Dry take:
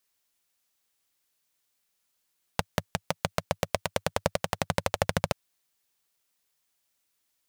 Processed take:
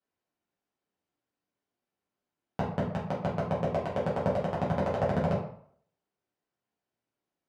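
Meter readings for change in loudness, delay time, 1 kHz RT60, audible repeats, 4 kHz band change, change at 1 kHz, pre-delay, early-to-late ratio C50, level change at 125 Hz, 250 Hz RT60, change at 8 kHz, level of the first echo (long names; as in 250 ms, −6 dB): +0.5 dB, no echo audible, 0.60 s, no echo audible, −14.0 dB, −0.5 dB, 5 ms, 5.0 dB, +3.0 dB, 0.60 s, below −20 dB, no echo audible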